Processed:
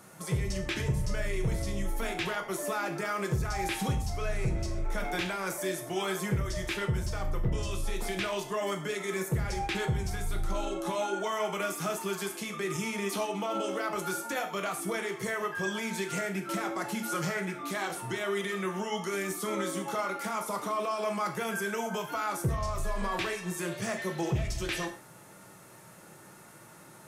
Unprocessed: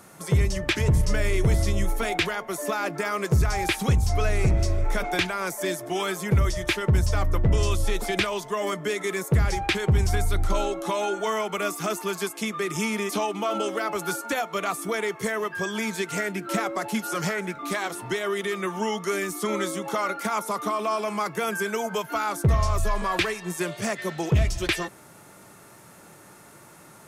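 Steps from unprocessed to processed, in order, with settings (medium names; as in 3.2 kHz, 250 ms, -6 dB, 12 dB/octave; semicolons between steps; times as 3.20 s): peak limiter -20.5 dBFS, peak gain reduction 6.5 dB; gated-style reverb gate 160 ms falling, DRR 3.5 dB; trim -4.5 dB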